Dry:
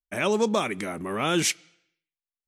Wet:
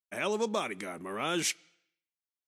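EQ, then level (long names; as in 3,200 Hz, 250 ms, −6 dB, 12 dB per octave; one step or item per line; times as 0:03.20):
high-pass filter 250 Hz 6 dB per octave
−6.0 dB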